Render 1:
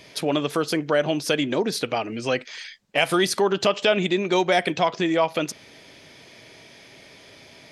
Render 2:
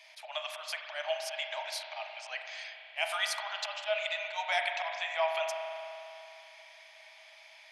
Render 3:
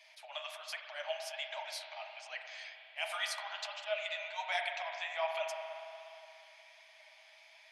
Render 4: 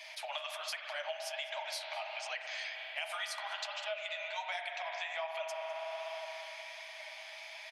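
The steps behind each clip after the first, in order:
auto swell 0.107 s; rippled Chebyshev high-pass 610 Hz, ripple 6 dB; spring tank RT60 2.9 s, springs 37 ms, chirp 55 ms, DRR 3.5 dB; gain -5 dB
flange 1.3 Hz, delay 4.1 ms, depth 9.7 ms, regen +41%; gain -1 dB
compressor 6:1, threshold -49 dBFS, peak gain reduction 17.5 dB; outdoor echo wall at 35 m, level -17 dB; gain +11.5 dB

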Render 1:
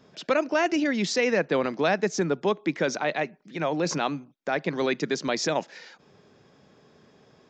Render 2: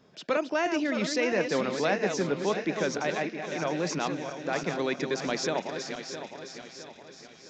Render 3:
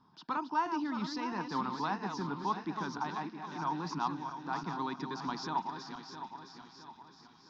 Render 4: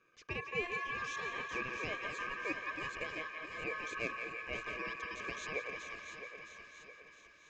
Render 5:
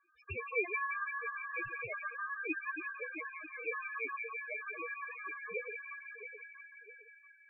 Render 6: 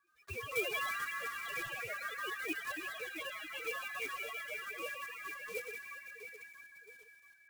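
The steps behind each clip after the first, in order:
regenerating reverse delay 0.331 s, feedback 66%, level -7 dB; thin delay 0.689 s, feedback 56%, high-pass 3000 Hz, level -9 dB; gain -4 dB
EQ curve 300 Hz 0 dB, 570 Hz -21 dB, 930 Hz +13 dB, 2200 Hz -14 dB, 3600 Hz -4 dB, 5100 Hz -2 dB, 7600 Hz -21 dB; gain -5.5 dB
ring modulator 1400 Hz; narrowing echo 0.172 s, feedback 80%, band-pass 1700 Hz, level -5.5 dB; gain -3 dB
loudest bins only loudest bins 4; gain +6 dB
block floating point 3-bit; echoes that change speed 0.175 s, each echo +3 st, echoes 3, each echo -6 dB; gain -2 dB

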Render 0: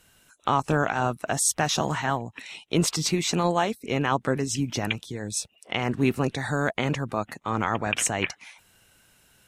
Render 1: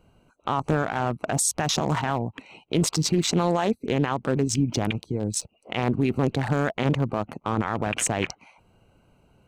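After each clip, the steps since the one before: Wiener smoothing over 25 samples; limiter -20.5 dBFS, peak gain reduction 11 dB; gain +7 dB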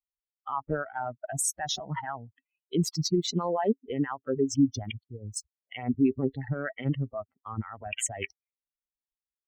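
per-bin expansion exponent 3; small resonant body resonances 270/400/1900 Hz, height 7 dB, ringing for 70 ms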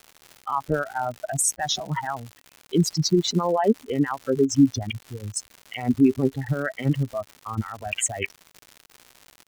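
crackle 180/s -38 dBFS; gain +6 dB

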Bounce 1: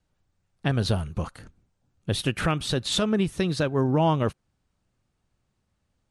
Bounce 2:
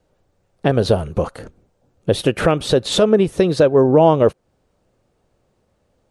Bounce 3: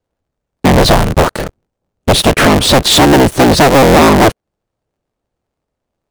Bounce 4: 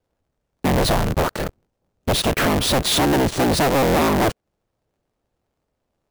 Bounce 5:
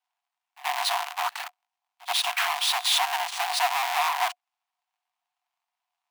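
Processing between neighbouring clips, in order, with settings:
bell 500 Hz +14 dB 1.4 oct; in parallel at +1 dB: compressor, threshold -25 dBFS, peak gain reduction 14.5 dB
cycle switcher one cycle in 3, inverted; sample leveller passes 5; gain -1.5 dB
limiter -15 dBFS, peak gain reduction 11.5 dB; sample-rate reducer 14000 Hz
rippled Chebyshev high-pass 700 Hz, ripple 6 dB; pre-echo 79 ms -21 dB

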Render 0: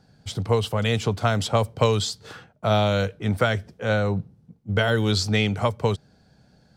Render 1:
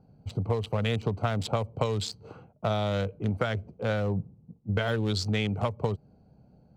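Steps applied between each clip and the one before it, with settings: Wiener smoothing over 25 samples; compressor, threshold -24 dBFS, peak gain reduction 10 dB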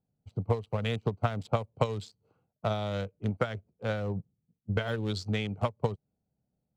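upward expander 2.5:1, over -40 dBFS; gain +2.5 dB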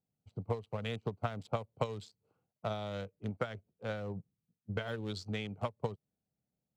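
low shelf 76 Hz -8 dB; gain -6 dB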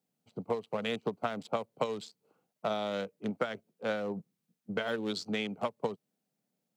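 HPF 180 Hz 24 dB/oct; in parallel at +1.5 dB: limiter -29.5 dBFS, peak gain reduction 11 dB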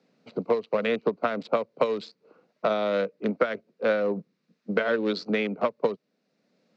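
speaker cabinet 220–4500 Hz, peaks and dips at 530 Hz +3 dB, 810 Hz -8 dB, 3200 Hz -9 dB; three-band squash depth 40%; gain +9 dB

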